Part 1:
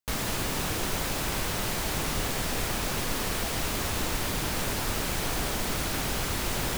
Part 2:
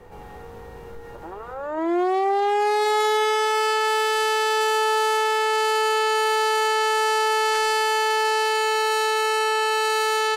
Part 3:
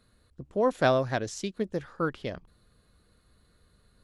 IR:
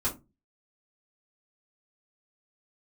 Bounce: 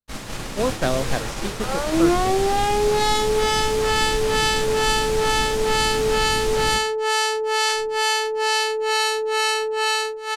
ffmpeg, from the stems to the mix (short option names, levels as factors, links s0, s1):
-filter_complex "[0:a]volume=1.33,asplit=2[s0][s1];[s1]volume=0.141[s2];[1:a]acrossover=split=520[s3][s4];[s3]aeval=exprs='val(0)*(1-1/2+1/2*cos(2*PI*2.2*n/s))':c=same[s5];[s4]aeval=exprs='val(0)*(1-1/2-1/2*cos(2*PI*2.2*n/s))':c=same[s6];[s5][s6]amix=inputs=2:normalize=0,dynaudnorm=f=130:g=9:m=2.24,adelay=150,volume=1.26,asplit=2[s7][s8];[s8]volume=0.112[s9];[2:a]volume=1.33[s10];[3:a]atrim=start_sample=2205[s11];[s2][s9]amix=inputs=2:normalize=0[s12];[s12][s11]afir=irnorm=-1:irlink=0[s13];[s0][s7][s10][s13]amix=inputs=4:normalize=0,agate=range=0.0224:threshold=0.112:ratio=3:detection=peak,lowpass=9200,acrossover=split=460|3000[s14][s15][s16];[s15]acompressor=threshold=0.0794:ratio=6[s17];[s14][s17][s16]amix=inputs=3:normalize=0"